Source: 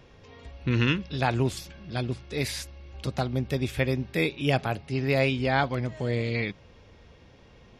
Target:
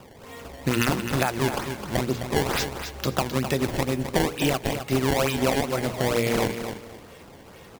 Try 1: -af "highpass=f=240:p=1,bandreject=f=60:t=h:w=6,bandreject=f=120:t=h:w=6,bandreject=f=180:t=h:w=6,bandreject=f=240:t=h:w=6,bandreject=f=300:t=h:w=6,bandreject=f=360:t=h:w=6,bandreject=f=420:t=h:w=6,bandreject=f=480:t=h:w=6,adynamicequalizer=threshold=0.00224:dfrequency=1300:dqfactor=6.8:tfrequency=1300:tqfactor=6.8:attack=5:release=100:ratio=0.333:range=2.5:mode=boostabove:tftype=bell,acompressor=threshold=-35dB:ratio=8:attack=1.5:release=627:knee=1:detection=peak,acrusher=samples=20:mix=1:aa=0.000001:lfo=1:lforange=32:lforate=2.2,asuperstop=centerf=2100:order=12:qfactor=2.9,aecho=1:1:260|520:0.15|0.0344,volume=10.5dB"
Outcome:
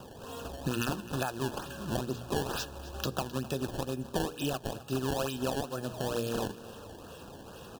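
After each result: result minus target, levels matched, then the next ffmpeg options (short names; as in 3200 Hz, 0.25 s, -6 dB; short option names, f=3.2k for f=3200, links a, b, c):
compressor: peak gain reduction +9 dB; echo-to-direct -8 dB; 2000 Hz band -2.5 dB
-af "highpass=f=240:p=1,bandreject=f=60:t=h:w=6,bandreject=f=120:t=h:w=6,bandreject=f=180:t=h:w=6,bandreject=f=240:t=h:w=6,bandreject=f=300:t=h:w=6,bandreject=f=360:t=h:w=6,bandreject=f=420:t=h:w=6,bandreject=f=480:t=h:w=6,adynamicequalizer=threshold=0.00224:dfrequency=1300:dqfactor=6.8:tfrequency=1300:tqfactor=6.8:attack=5:release=100:ratio=0.333:range=2.5:mode=boostabove:tftype=bell,acompressor=threshold=-25dB:ratio=8:attack=1.5:release=627:knee=1:detection=peak,acrusher=samples=20:mix=1:aa=0.000001:lfo=1:lforange=32:lforate=2.2,asuperstop=centerf=2100:order=12:qfactor=2.9,aecho=1:1:260|520:0.15|0.0344,volume=10.5dB"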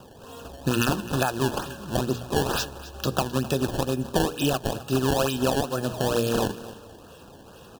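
echo-to-direct -8 dB; 2000 Hz band -3.0 dB
-af "highpass=f=240:p=1,bandreject=f=60:t=h:w=6,bandreject=f=120:t=h:w=6,bandreject=f=180:t=h:w=6,bandreject=f=240:t=h:w=6,bandreject=f=300:t=h:w=6,bandreject=f=360:t=h:w=6,bandreject=f=420:t=h:w=6,bandreject=f=480:t=h:w=6,adynamicequalizer=threshold=0.00224:dfrequency=1300:dqfactor=6.8:tfrequency=1300:tqfactor=6.8:attack=5:release=100:ratio=0.333:range=2.5:mode=boostabove:tftype=bell,acompressor=threshold=-25dB:ratio=8:attack=1.5:release=627:knee=1:detection=peak,acrusher=samples=20:mix=1:aa=0.000001:lfo=1:lforange=32:lforate=2.2,asuperstop=centerf=2100:order=12:qfactor=2.9,aecho=1:1:260|520|780:0.376|0.0864|0.0199,volume=10.5dB"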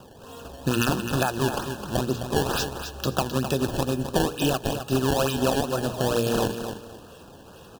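2000 Hz band -3.0 dB
-af "highpass=f=240:p=1,bandreject=f=60:t=h:w=6,bandreject=f=120:t=h:w=6,bandreject=f=180:t=h:w=6,bandreject=f=240:t=h:w=6,bandreject=f=300:t=h:w=6,bandreject=f=360:t=h:w=6,bandreject=f=420:t=h:w=6,bandreject=f=480:t=h:w=6,adynamicequalizer=threshold=0.00224:dfrequency=1300:dqfactor=6.8:tfrequency=1300:tqfactor=6.8:attack=5:release=100:ratio=0.333:range=2.5:mode=boostabove:tftype=bell,acompressor=threshold=-25dB:ratio=8:attack=1.5:release=627:knee=1:detection=peak,acrusher=samples=20:mix=1:aa=0.000001:lfo=1:lforange=32:lforate=2.2,aecho=1:1:260|520|780:0.376|0.0864|0.0199,volume=10.5dB"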